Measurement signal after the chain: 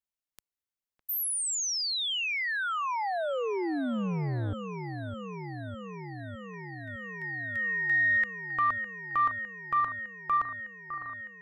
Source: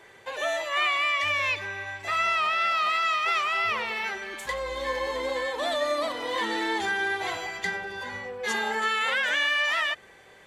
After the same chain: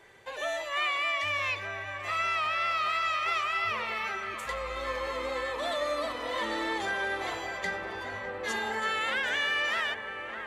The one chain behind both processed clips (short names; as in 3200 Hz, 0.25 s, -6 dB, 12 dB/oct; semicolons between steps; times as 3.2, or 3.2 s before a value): low shelf 89 Hz +7 dB; on a send: dark delay 0.607 s, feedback 80%, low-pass 2100 Hz, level -10 dB; on the sum: core saturation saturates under 330 Hz; gain -4.5 dB